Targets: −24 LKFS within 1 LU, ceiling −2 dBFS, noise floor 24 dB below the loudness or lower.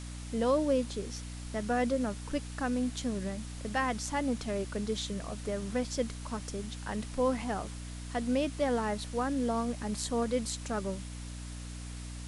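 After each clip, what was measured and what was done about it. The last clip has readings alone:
mains hum 60 Hz; hum harmonics up to 300 Hz; level of the hum −40 dBFS; background noise floor −42 dBFS; target noise floor −58 dBFS; integrated loudness −33.5 LKFS; sample peak −17.0 dBFS; target loudness −24.0 LKFS
→ mains-hum notches 60/120/180/240/300 Hz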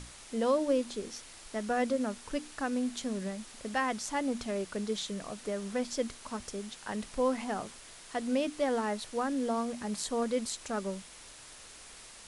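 mains hum none found; background noise floor −51 dBFS; target noise floor −58 dBFS
→ broadband denoise 7 dB, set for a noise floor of −51 dBFS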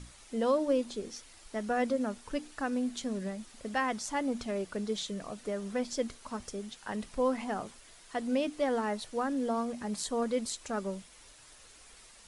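background noise floor −56 dBFS; target noise floor −58 dBFS
→ broadband denoise 6 dB, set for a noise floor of −56 dBFS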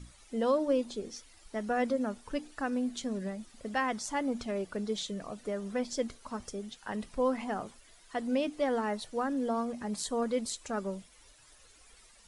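background noise floor −59 dBFS; integrated loudness −34.0 LKFS; sample peak −17.5 dBFS; target loudness −24.0 LKFS
→ level +10 dB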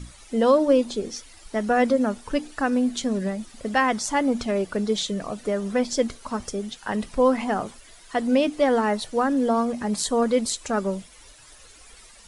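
integrated loudness −24.0 LKFS; sample peak −7.5 dBFS; background noise floor −49 dBFS

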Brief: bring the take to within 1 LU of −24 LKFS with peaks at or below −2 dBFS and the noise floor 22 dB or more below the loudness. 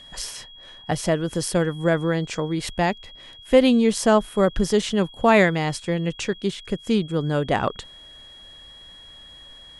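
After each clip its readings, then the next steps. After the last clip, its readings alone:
interfering tone 3,300 Hz; level of the tone −43 dBFS; integrated loudness −22.0 LKFS; sample peak −3.5 dBFS; target loudness −24.0 LKFS
→ notch filter 3,300 Hz, Q 30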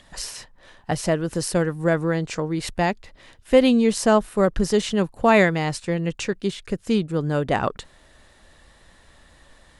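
interfering tone none found; integrated loudness −22.0 LKFS; sample peak −3.5 dBFS; target loudness −24.0 LKFS
→ level −2 dB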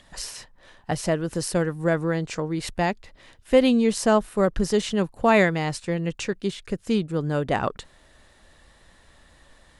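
integrated loudness −24.0 LKFS; sample peak −5.5 dBFS; background noise floor −56 dBFS

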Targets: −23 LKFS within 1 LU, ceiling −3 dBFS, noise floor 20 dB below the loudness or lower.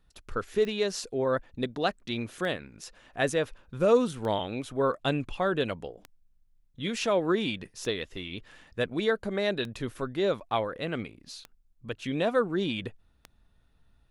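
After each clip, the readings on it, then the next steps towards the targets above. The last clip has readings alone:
number of clicks 8; integrated loudness −30.0 LKFS; sample peak −10.5 dBFS; target loudness −23.0 LKFS
→ click removal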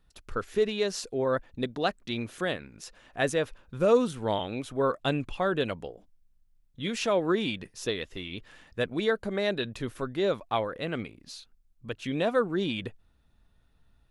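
number of clicks 0; integrated loudness −30.0 LKFS; sample peak −10.5 dBFS; target loudness −23.0 LKFS
→ level +7 dB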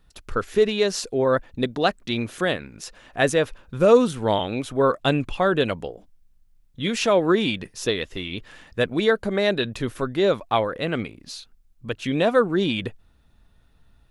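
integrated loudness −23.0 LKFS; sample peak −3.5 dBFS; background noise floor −58 dBFS

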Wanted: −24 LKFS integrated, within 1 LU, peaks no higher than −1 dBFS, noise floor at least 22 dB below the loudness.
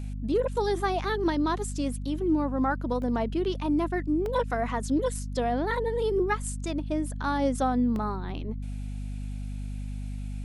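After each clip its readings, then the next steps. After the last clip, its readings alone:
number of dropouts 3; longest dropout 1.3 ms; mains hum 50 Hz; hum harmonics up to 250 Hz; level of the hum −31 dBFS; integrated loudness −29.0 LKFS; sample peak −14.5 dBFS; target loudness −24.0 LKFS
→ repair the gap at 0:03.02/0:04.26/0:07.96, 1.3 ms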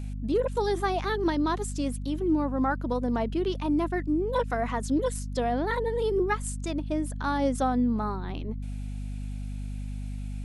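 number of dropouts 0; mains hum 50 Hz; hum harmonics up to 250 Hz; level of the hum −31 dBFS
→ mains-hum notches 50/100/150/200/250 Hz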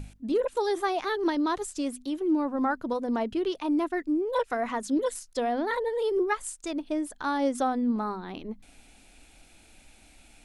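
mains hum none found; integrated loudness −29.0 LKFS; sample peak −16.0 dBFS; target loudness −24.0 LKFS
→ level +5 dB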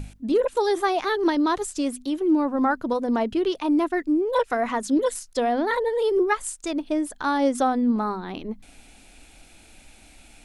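integrated loudness −24.0 LKFS; sample peak −11.0 dBFS; background noise floor −52 dBFS

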